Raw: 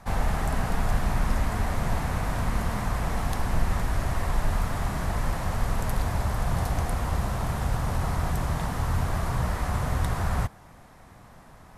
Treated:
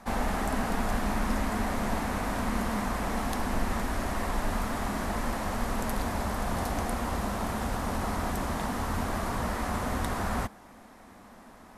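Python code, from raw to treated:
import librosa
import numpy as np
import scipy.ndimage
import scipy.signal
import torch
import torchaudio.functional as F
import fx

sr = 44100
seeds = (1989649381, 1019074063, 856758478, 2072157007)

y = fx.low_shelf_res(x, sr, hz=180.0, db=-6.5, q=3.0)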